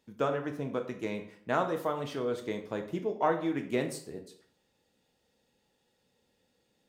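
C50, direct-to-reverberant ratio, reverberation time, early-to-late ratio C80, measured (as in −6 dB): 10.0 dB, 5.0 dB, 0.55 s, 13.5 dB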